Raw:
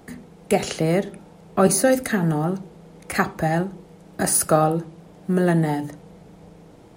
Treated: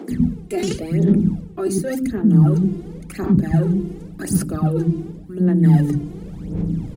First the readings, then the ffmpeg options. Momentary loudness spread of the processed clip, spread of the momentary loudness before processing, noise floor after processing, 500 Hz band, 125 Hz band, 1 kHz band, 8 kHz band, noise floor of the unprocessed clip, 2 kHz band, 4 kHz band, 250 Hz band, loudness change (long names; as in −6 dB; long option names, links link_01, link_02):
16 LU, 16 LU, −36 dBFS, −3.5 dB, +8.5 dB, −10.0 dB, −9.0 dB, −48 dBFS, −9.0 dB, can't be measured, +6.5 dB, +2.5 dB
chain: -filter_complex "[0:a]aphaser=in_gain=1:out_gain=1:delay=2.9:decay=0.7:speed=0.91:type=sinusoidal,areverse,acompressor=threshold=-27dB:ratio=8,areverse,lowshelf=frequency=430:width_type=q:width=1.5:gain=13.5,acrossover=split=300[link_01][link_02];[link_01]adelay=110[link_03];[link_03][link_02]amix=inputs=2:normalize=0,volume=2dB"